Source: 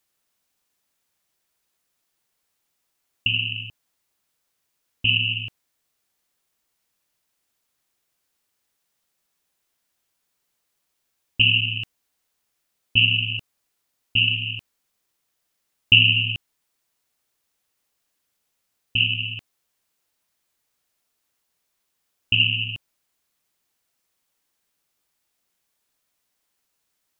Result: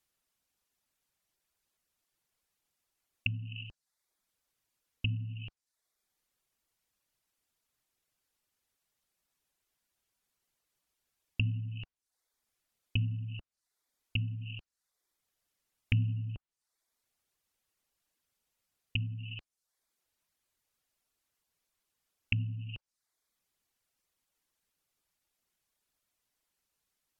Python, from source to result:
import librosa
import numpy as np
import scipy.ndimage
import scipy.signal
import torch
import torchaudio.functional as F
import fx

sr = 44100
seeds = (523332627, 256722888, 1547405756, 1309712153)

y = fx.low_shelf(x, sr, hz=93.0, db=8.0)
y = fx.dereverb_blind(y, sr, rt60_s=0.58)
y = fx.env_lowpass_down(y, sr, base_hz=340.0, full_db=-19.5)
y = y * 10.0 ** (-5.5 / 20.0)